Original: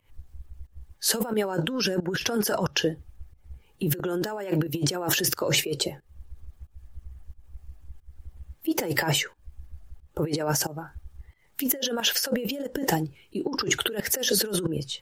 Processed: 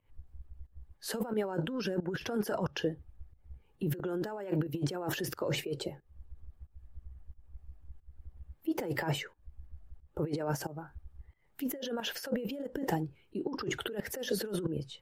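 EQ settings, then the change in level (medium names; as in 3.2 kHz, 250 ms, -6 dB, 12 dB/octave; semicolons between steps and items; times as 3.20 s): treble shelf 2.3 kHz -10.5 dB; peaking EQ 6.2 kHz -3 dB 0.63 oct; -6.0 dB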